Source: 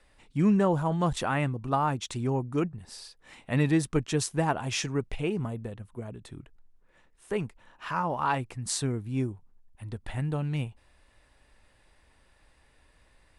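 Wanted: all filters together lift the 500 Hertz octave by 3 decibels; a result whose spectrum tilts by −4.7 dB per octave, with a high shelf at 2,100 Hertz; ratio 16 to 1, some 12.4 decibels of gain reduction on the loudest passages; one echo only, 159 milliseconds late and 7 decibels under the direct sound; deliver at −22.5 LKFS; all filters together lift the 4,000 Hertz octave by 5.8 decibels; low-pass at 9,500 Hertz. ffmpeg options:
ffmpeg -i in.wav -af "lowpass=9500,equalizer=frequency=500:width_type=o:gain=3.5,highshelf=frequency=2100:gain=4.5,equalizer=frequency=4000:width_type=o:gain=3,acompressor=threshold=-30dB:ratio=16,aecho=1:1:159:0.447,volume=13dB" out.wav

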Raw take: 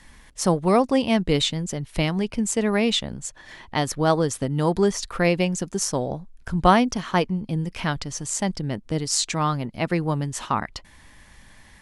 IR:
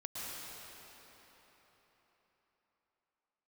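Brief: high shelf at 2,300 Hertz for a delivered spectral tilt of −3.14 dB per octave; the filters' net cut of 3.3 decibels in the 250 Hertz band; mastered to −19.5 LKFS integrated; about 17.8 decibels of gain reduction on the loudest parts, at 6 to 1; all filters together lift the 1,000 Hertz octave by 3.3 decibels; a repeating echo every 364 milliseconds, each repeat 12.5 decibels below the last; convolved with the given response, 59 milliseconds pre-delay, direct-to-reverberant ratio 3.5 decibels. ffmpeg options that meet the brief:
-filter_complex "[0:a]equalizer=frequency=250:width_type=o:gain=-5,equalizer=frequency=1000:width_type=o:gain=3,highshelf=frequency=2300:gain=8.5,acompressor=threshold=-27dB:ratio=6,aecho=1:1:364|728|1092:0.237|0.0569|0.0137,asplit=2[link_01][link_02];[1:a]atrim=start_sample=2205,adelay=59[link_03];[link_02][link_03]afir=irnorm=-1:irlink=0,volume=-5dB[link_04];[link_01][link_04]amix=inputs=2:normalize=0,volume=9.5dB"

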